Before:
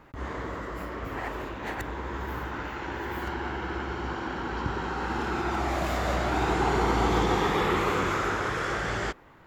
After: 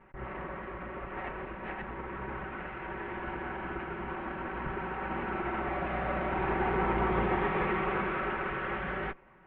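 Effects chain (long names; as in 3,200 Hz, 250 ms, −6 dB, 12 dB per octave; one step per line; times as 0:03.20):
lower of the sound and its delayed copy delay 5.3 ms
Butterworth low-pass 2,600 Hz 36 dB per octave
level −3 dB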